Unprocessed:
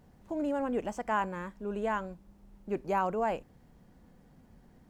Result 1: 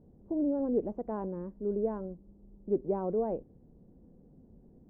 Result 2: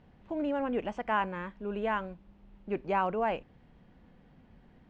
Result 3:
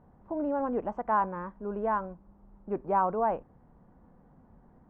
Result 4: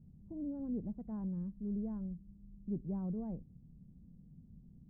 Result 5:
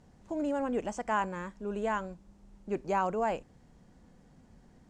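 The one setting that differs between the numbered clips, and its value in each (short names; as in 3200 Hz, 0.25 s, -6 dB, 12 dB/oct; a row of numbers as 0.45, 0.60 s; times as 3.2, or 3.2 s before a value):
synth low-pass, frequency: 420, 3000, 1100, 170, 7500 Hz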